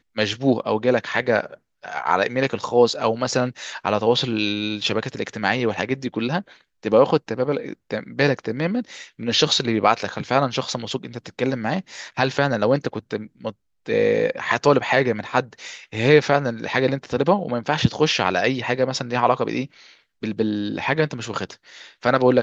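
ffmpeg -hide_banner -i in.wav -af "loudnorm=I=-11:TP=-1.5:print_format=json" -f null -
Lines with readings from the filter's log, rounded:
"input_i" : "-21.7",
"input_tp" : "-1.7",
"input_lra" : "3.6",
"input_thresh" : "-32.2",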